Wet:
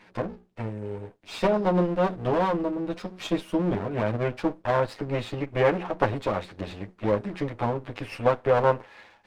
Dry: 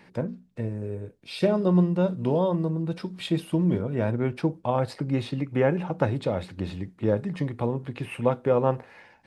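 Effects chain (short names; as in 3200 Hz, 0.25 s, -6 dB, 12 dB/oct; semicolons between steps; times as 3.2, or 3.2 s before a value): minimum comb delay 9.6 ms; LPF 3600 Hz 6 dB/oct; low shelf 350 Hz -8.5 dB; gain +4 dB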